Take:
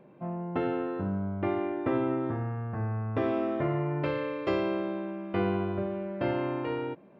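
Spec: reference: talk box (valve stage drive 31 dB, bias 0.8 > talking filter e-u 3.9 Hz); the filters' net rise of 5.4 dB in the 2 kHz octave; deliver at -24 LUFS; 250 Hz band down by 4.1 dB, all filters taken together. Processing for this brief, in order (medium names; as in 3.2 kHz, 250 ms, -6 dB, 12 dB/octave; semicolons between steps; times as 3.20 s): peaking EQ 250 Hz -6.5 dB; peaking EQ 2 kHz +7 dB; valve stage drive 31 dB, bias 0.8; talking filter e-u 3.9 Hz; trim +24 dB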